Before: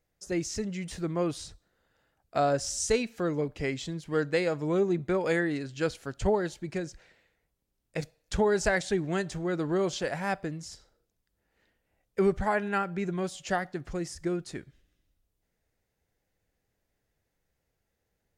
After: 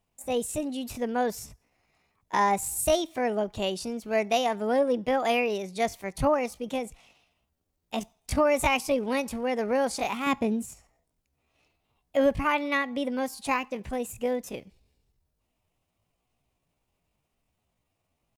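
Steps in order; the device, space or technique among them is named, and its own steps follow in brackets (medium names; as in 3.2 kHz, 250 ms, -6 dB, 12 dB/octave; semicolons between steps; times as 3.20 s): 10.27–10.67 s: peaking EQ 120 Hz +10.5 dB 2.1 oct; chipmunk voice (pitch shift +6 st); trim +2 dB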